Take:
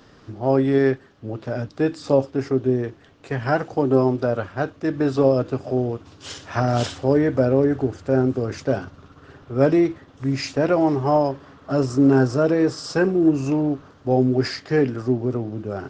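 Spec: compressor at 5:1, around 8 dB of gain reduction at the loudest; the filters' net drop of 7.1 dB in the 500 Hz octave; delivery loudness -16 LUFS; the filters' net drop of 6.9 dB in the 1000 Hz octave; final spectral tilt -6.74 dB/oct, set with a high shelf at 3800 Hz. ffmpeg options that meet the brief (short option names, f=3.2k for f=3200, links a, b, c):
-af "equalizer=f=500:t=o:g=-8,equalizer=f=1k:t=o:g=-6,highshelf=f=3.8k:g=-4,acompressor=threshold=-23dB:ratio=5,volume=13.5dB"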